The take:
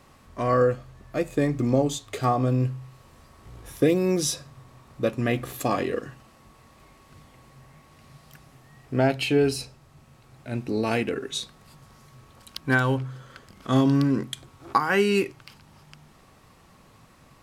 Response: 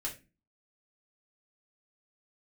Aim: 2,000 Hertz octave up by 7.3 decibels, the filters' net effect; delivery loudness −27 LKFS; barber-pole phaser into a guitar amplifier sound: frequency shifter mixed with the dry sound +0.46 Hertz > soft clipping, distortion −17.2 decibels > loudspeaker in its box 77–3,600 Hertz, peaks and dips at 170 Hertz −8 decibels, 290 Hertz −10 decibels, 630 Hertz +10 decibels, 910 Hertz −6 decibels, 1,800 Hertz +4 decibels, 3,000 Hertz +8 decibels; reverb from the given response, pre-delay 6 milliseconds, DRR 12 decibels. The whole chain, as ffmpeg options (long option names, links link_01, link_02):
-filter_complex "[0:a]equalizer=frequency=2000:width_type=o:gain=6.5,asplit=2[link_01][link_02];[1:a]atrim=start_sample=2205,adelay=6[link_03];[link_02][link_03]afir=irnorm=-1:irlink=0,volume=-13dB[link_04];[link_01][link_04]amix=inputs=2:normalize=0,asplit=2[link_05][link_06];[link_06]afreqshift=0.46[link_07];[link_05][link_07]amix=inputs=2:normalize=1,asoftclip=threshold=-15dB,highpass=77,equalizer=frequency=170:width_type=q:width=4:gain=-8,equalizer=frequency=290:width_type=q:width=4:gain=-10,equalizer=frequency=630:width_type=q:width=4:gain=10,equalizer=frequency=910:width_type=q:width=4:gain=-6,equalizer=frequency=1800:width_type=q:width=4:gain=4,equalizer=frequency=3000:width_type=q:width=4:gain=8,lowpass=frequency=3600:width=0.5412,lowpass=frequency=3600:width=1.3066,volume=-0.5dB"